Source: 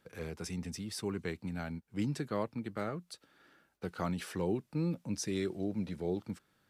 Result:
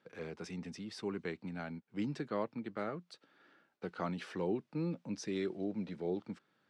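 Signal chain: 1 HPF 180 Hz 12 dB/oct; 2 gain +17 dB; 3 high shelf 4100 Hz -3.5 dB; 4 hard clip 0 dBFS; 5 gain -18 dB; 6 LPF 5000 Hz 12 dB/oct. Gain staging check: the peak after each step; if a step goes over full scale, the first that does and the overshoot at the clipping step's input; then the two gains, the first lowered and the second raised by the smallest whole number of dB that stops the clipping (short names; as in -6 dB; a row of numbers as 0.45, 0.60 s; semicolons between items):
-23.0, -6.0, -6.0, -6.0, -24.0, -24.0 dBFS; no overload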